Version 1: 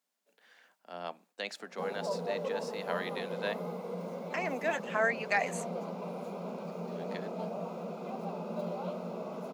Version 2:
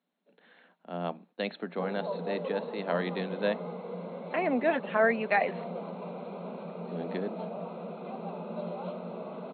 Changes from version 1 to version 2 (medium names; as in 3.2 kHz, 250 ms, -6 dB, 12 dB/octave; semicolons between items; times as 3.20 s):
speech: remove high-pass 1.1 kHz 6 dB/octave; master: add brick-wall FIR low-pass 4.3 kHz